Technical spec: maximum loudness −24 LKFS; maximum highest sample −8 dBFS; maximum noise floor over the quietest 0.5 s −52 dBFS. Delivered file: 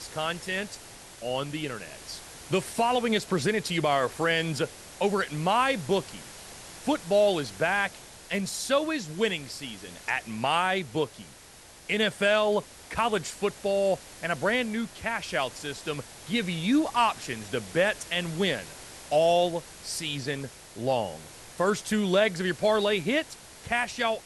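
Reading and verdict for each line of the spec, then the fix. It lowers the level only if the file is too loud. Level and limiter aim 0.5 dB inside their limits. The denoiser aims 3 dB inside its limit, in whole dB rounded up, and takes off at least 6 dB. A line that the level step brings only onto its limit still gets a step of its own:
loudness −27.5 LKFS: in spec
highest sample −11.5 dBFS: in spec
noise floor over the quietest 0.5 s −50 dBFS: out of spec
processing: broadband denoise 6 dB, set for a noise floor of −50 dBFS

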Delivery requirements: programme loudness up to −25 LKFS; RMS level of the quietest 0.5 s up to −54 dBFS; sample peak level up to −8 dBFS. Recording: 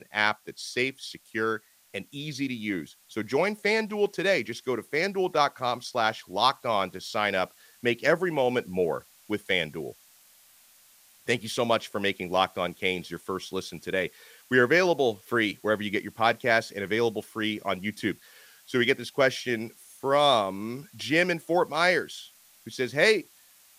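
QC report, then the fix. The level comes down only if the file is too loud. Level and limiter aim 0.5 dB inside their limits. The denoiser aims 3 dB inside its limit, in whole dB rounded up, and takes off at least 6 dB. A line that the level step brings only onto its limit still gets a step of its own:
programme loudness −27.0 LKFS: in spec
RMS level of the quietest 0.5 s −58 dBFS: in spec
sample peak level −6.0 dBFS: out of spec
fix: brickwall limiter −8.5 dBFS

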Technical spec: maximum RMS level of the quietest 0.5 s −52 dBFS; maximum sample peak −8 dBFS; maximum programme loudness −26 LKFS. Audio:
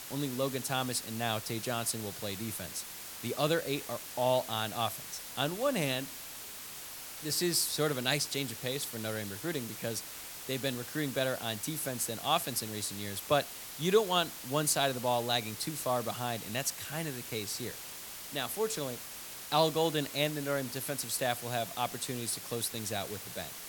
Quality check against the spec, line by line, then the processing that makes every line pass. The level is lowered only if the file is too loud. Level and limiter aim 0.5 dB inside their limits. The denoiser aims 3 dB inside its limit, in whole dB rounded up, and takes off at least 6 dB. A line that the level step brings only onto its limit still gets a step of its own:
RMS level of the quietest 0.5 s −45 dBFS: out of spec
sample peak −12.5 dBFS: in spec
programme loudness −33.5 LKFS: in spec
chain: broadband denoise 10 dB, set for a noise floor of −45 dBFS

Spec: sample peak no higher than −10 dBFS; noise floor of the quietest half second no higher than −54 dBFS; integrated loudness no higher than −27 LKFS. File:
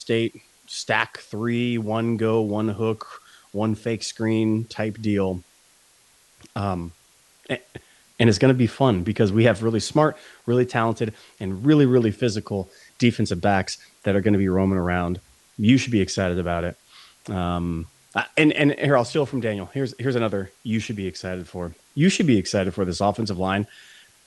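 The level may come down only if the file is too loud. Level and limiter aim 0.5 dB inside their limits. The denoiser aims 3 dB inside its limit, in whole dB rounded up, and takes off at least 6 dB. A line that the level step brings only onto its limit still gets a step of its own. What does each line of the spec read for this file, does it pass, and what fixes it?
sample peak −3.5 dBFS: out of spec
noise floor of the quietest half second −57 dBFS: in spec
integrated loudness −22.5 LKFS: out of spec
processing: level −5 dB
brickwall limiter −10.5 dBFS

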